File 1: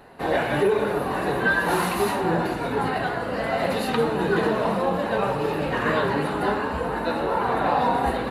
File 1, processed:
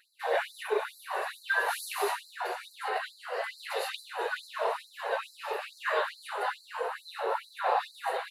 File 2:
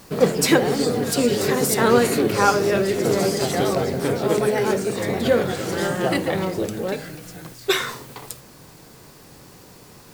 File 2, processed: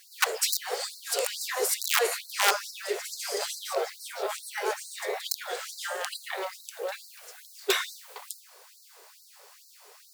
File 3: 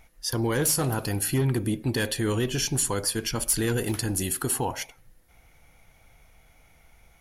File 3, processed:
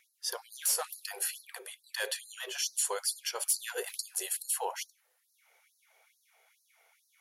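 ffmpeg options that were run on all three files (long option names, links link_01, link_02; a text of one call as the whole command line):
ffmpeg -i in.wav -af "aeval=exprs='(mod(2.51*val(0)+1,2)-1)/2.51':channel_layout=same,afftfilt=real='re*gte(b*sr/1024,360*pow(4000/360,0.5+0.5*sin(2*PI*2.3*pts/sr)))':imag='im*gte(b*sr/1024,360*pow(4000/360,0.5+0.5*sin(2*PI*2.3*pts/sr)))':win_size=1024:overlap=0.75,volume=-4.5dB" out.wav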